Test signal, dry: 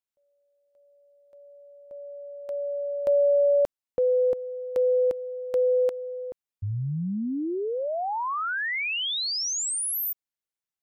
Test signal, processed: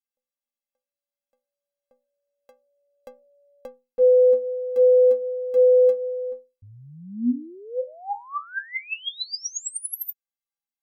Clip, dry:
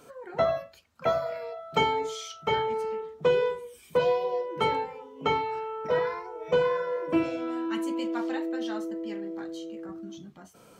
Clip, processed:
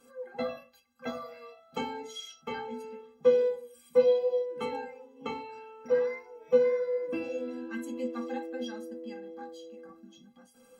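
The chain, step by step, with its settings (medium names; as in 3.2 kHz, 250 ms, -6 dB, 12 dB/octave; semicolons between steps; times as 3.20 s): band-stop 570 Hz, Q 13; dynamic bell 280 Hz, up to +5 dB, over -38 dBFS, Q 0.97; inharmonic resonator 240 Hz, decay 0.3 s, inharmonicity 0.03; trim +9 dB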